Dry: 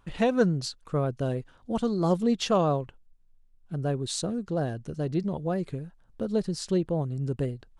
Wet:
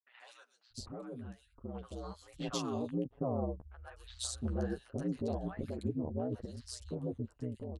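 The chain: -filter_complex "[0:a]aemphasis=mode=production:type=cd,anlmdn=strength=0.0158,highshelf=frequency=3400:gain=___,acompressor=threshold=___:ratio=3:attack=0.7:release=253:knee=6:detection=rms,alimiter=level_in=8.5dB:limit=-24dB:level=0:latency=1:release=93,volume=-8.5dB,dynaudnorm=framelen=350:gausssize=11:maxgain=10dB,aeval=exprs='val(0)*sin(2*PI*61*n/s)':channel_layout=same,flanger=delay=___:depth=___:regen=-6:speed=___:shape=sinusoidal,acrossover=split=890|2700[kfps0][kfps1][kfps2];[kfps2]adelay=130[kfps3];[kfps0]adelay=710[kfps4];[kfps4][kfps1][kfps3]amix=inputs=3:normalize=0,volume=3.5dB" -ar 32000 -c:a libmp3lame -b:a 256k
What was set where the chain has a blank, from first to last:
-4.5, -42dB, 7, 5.9, 1.2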